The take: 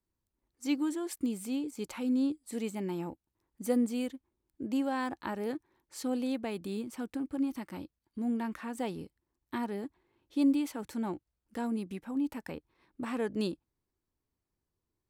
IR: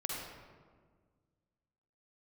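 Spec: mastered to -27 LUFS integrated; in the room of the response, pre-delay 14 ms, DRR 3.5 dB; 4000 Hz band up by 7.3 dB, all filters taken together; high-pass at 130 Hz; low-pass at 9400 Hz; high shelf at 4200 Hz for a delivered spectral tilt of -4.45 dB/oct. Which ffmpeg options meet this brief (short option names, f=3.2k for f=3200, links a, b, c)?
-filter_complex "[0:a]highpass=130,lowpass=9.4k,equalizer=f=4k:t=o:g=7,highshelf=f=4.2k:g=4,asplit=2[a][b];[1:a]atrim=start_sample=2205,adelay=14[c];[b][c]afir=irnorm=-1:irlink=0,volume=-6dB[d];[a][d]amix=inputs=2:normalize=0,volume=6dB"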